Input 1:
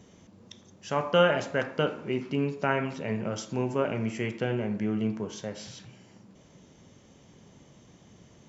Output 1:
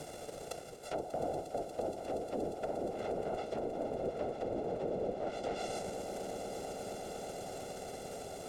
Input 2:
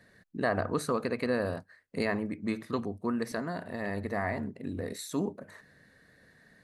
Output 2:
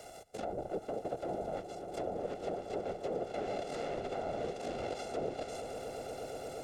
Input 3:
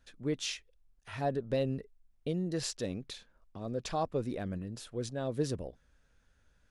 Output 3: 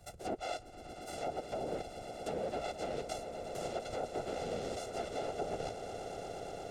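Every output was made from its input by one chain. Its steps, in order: sample sorter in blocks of 64 samples; treble ducked by the level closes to 500 Hz, closed at -25 dBFS; ten-band EQ 125 Hz -10 dB, 250 Hz -9 dB, 500 Hz +11 dB, 1000 Hz -11 dB, 2000 Hz -5 dB, 8000 Hz +8 dB; reverse; compressor 4:1, threshold -43 dBFS; reverse; whisperiser; on a send: swelling echo 0.118 s, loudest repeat 8, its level -16.5 dB; on the sum: three-band squash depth 40%; gain +6 dB

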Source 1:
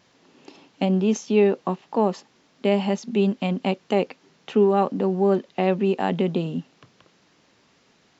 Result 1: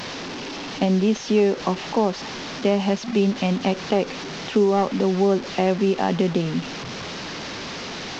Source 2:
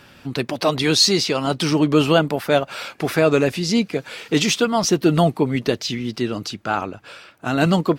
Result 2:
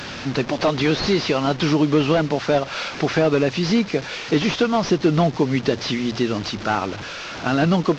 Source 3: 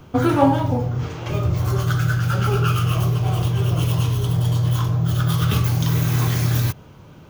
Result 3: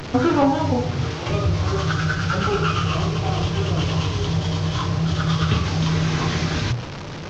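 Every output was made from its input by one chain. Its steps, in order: delta modulation 32 kbps, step -29.5 dBFS; notches 60/120 Hz; compressor 2:1, threshold -20 dBFS; gain +3.5 dB

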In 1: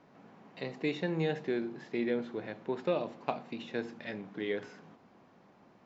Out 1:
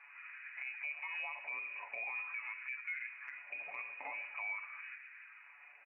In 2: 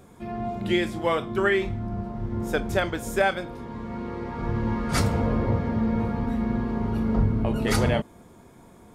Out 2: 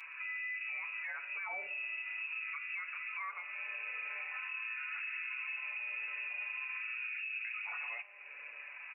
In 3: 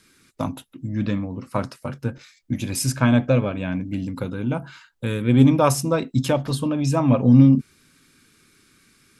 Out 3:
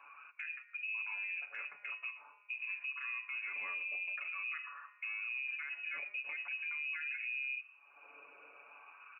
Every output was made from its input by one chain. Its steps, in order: HPF 52 Hz 24 dB/oct; resonator 210 Hz, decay 1 s, mix 50%; inverted band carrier 2700 Hz; comb 7 ms, depth 79%; LFO high-pass sine 0.45 Hz 520–1600 Hz; bell 440 Hz -4.5 dB 1.1 oct; compressor 4:1, threshold -43 dBFS; low shelf 160 Hz +6 dB; limiter -38 dBFS; warbling echo 0.12 s, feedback 54%, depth 66 cents, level -21 dB; gain +5 dB

